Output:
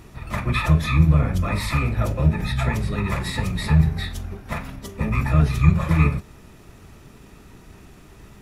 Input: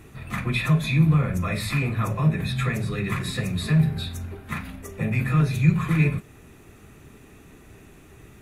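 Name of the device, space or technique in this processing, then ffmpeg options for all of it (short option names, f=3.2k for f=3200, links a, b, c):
octave pedal: -filter_complex "[0:a]asplit=2[a][b];[b]asetrate=22050,aresample=44100,atempo=2,volume=0dB[c];[a][c]amix=inputs=2:normalize=0,asettb=1/sr,asplit=3[d][e][f];[d]atrim=end=1.814[g];[e]atrim=start=1.81:end=2.72,asetpts=PTS-STARTPTS,afade=t=in:d=0.004:c=qsin,afade=t=out:st=0.906:d=0.004:c=qsin,bandreject=f=1.1k:w=5.7[h];[f]atrim=start=2.716[i];[g][h]acrossfade=d=0.004:c1=hsin:c2=qsin[j];[j][i]acrossfade=d=0.004:c1=qsin:c2=hsin"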